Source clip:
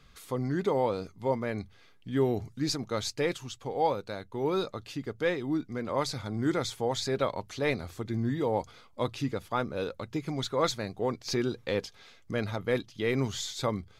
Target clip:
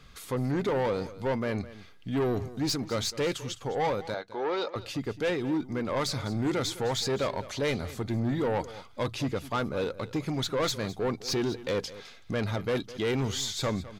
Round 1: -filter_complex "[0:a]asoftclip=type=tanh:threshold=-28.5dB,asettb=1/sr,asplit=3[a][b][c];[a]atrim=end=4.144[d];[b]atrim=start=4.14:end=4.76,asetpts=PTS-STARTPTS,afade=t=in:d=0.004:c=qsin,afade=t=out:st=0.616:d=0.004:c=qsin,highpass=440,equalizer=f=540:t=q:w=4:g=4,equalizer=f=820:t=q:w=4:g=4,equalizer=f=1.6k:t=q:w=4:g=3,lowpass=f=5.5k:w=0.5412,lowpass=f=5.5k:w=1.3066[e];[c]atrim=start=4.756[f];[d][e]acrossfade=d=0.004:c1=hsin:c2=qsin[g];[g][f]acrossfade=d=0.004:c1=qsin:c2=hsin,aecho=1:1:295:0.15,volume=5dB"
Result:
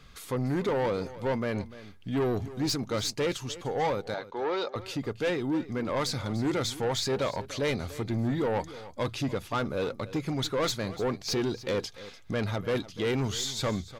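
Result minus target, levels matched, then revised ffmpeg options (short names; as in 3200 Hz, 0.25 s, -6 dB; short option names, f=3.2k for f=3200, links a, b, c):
echo 87 ms late
-filter_complex "[0:a]asoftclip=type=tanh:threshold=-28.5dB,asettb=1/sr,asplit=3[a][b][c];[a]atrim=end=4.144[d];[b]atrim=start=4.14:end=4.76,asetpts=PTS-STARTPTS,afade=t=in:d=0.004:c=qsin,afade=t=out:st=0.616:d=0.004:c=qsin,highpass=440,equalizer=f=540:t=q:w=4:g=4,equalizer=f=820:t=q:w=4:g=4,equalizer=f=1.6k:t=q:w=4:g=3,lowpass=f=5.5k:w=0.5412,lowpass=f=5.5k:w=1.3066[e];[c]atrim=start=4.756[f];[d][e]acrossfade=d=0.004:c1=hsin:c2=qsin[g];[g][f]acrossfade=d=0.004:c1=qsin:c2=hsin,aecho=1:1:208:0.15,volume=5dB"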